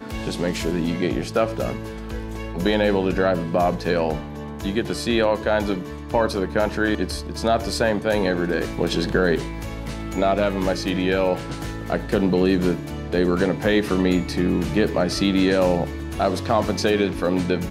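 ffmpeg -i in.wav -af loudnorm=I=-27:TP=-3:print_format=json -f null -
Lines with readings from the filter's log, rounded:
"input_i" : "-22.2",
"input_tp" : "-5.6",
"input_lra" : "2.2",
"input_thresh" : "-32.2",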